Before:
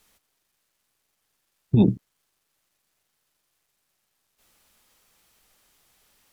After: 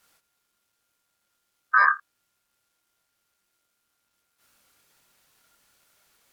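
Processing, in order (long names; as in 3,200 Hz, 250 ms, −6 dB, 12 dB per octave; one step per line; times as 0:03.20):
multi-voice chorus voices 2, 0.6 Hz, delay 25 ms, depth 3.2 ms
ring modulation 1,400 Hz
level +5 dB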